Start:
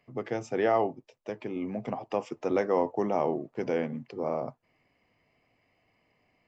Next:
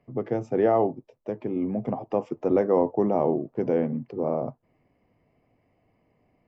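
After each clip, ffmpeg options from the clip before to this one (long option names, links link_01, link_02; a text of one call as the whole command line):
ffmpeg -i in.wav -af "tiltshelf=frequency=1300:gain=9.5,volume=-2dB" out.wav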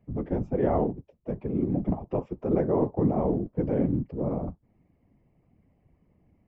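ffmpeg -i in.wav -af "bass=frequency=250:gain=14,treble=frequency=4000:gain=-9,afftfilt=real='hypot(re,im)*cos(2*PI*random(0))':imag='hypot(re,im)*sin(2*PI*random(1))':win_size=512:overlap=0.75" out.wav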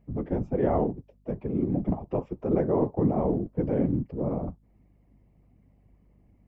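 ffmpeg -i in.wav -af "aeval=exprs='val(0)+0.000891*(sin(2*PI*50*n/s)+sin(2*PI*2*50*n/s)/2+sin(2*PI*3*50*n/s)/3+sin(2*PI*4*50*n/s)/4+sin(2*PI*5*50*n/s)/5)':channel_layout=same" out.wav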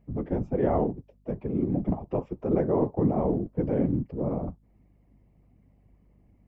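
ffmpeg -i in.wav -af anull out.wav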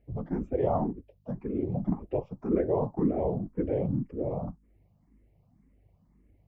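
ffmpeg -i in.wav -filter_complex "[0:a]asplit=2[link_01][link_02];[link_02]afreqshift=1.9[link_03];[link_01][link_03]amix=inputs=2:normalize=1" out.wav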